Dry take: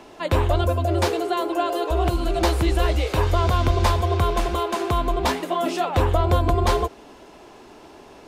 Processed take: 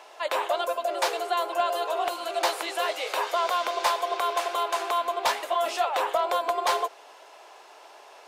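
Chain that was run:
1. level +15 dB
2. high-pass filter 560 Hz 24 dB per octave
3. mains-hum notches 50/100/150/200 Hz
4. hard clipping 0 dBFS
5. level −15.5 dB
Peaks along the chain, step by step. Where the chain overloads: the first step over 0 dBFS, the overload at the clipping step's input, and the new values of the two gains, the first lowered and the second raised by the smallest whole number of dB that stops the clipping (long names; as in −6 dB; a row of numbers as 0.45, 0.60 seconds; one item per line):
+5.5, +5.0, +5.0, 0.0, −15.5 dBFS
step 1, 5.0 dB
step 1 +10 dB, step 5 −10.5 dB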